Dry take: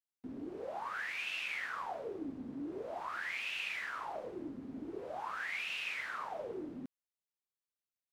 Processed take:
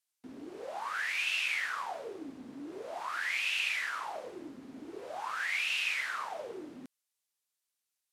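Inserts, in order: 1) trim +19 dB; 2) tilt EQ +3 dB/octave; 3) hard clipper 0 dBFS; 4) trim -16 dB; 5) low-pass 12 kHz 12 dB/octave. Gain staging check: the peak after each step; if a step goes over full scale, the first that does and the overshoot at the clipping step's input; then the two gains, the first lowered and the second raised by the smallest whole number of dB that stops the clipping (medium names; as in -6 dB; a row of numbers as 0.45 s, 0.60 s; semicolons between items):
-8.0 dBFS, -4.0 dBFS, -4.0 dBFS, -20.0 dBFS, -20.0 dBFS; nothing clips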